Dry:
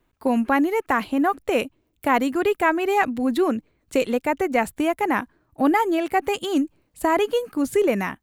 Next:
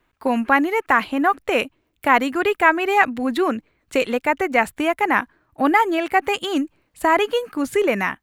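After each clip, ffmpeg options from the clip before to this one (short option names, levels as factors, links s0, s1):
-af "equalizer=f=1800:t=o:w=2.6:g=8.5,volume=0.841"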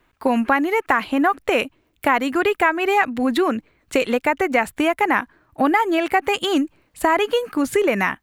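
-af "acompressor=threshold=0.1:ratio=3,volume=1.68"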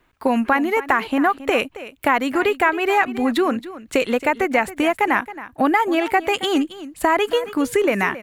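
-af "aecho=1:1:272:0.168"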